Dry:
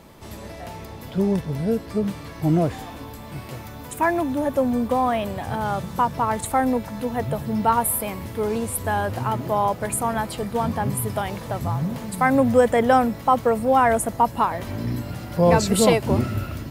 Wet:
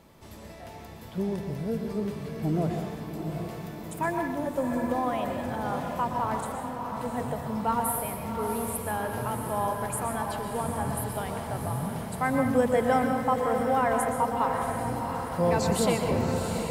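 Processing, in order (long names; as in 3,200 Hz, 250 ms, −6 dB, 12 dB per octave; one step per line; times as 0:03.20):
0:06.40–0:06.97: downward compressor, threshold −31 dBFS, peak gain reduction 15 dB
feedback delay with all-pass diffusion 729 ms, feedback 55%, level −6.5 dB
convolution reverb RT60 0.90 s, pre-delay 113 ms, DRR 4.5 dB
level −8.5 dB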